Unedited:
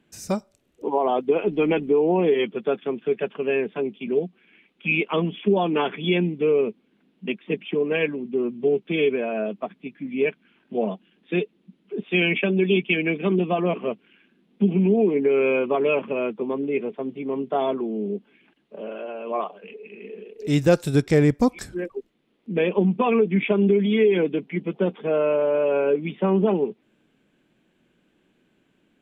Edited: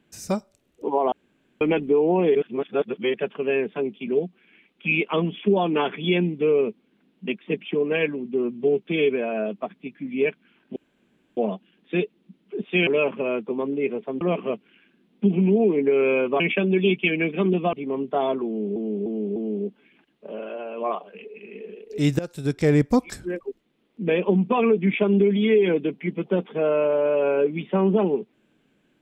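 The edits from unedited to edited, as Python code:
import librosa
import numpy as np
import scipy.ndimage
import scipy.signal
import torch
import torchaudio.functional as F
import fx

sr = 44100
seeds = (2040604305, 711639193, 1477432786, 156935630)

y = fx.edit(x, sr, fx.room_tone_fill(start_s=1.12, length_s=0.49),
    fx.reverse_span(start_s=2.35, length_s=0.79),
    fx.insert_room_tone(at_s=10.76, length_s=0.61),
    fx.swap(start_s=12.26, length_s=1.33, other_s=15.78, other_length_s=1.34),
    fx.repeat(start_s=17.85, length_s=0.3, count=4),
    fx.fade_in_from(start_s=20.68, length_s=0.59, floor_db=-20.0), tone=tone)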